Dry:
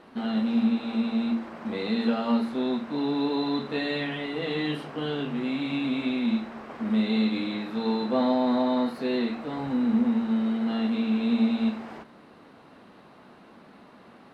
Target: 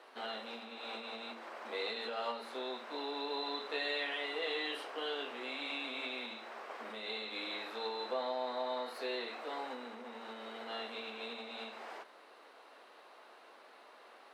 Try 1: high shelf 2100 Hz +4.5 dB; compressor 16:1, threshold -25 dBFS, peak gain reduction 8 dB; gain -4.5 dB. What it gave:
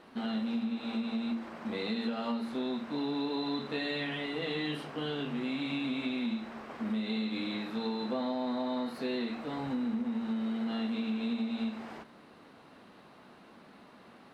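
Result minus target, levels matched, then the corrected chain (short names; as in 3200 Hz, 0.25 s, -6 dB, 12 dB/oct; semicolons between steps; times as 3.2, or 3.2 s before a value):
500 Hz band -3.5 dB
high shelf 2100 Hz +4.5 dB; compressor 16:1, threshold -25 dBFS, peak gain reduction 8 dB; HPF 430 Hz 24 dB/oct; gain -4.5 dB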